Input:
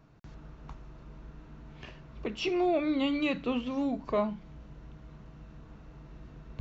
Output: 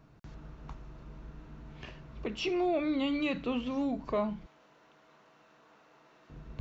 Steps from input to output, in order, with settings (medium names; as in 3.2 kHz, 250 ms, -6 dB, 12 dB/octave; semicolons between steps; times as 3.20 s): 4.46–6.30 s: high-pass 570 Hz 12 dB/octave; in parallel at -2.5 dB: peak limiter -28.5 dBFS, peak gain reduction 12 dB; on the sum: trim -4.5 dB